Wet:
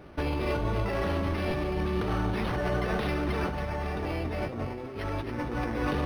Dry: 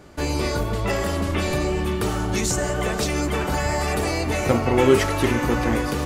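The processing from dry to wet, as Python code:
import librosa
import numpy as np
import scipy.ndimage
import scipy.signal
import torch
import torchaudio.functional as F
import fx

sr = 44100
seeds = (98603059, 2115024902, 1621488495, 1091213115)

y = fx.low_shelf(x, sr, hz=480.0, db=4.5, at=(3.48, 5.51))
y = fx.over_compress(y, sr, threshold_db=-25.0, ratio=-1.0)
y = fx.echo_thinned(y, sr, ms=277, feedback_pct=51, hz=420.0, wet_db=-10.0)
y = np.interp(np.arange(len(y)), np.arange(len(y))[::6], y[::6])
y = y * 10.0 ** (-5.5 / 20.0)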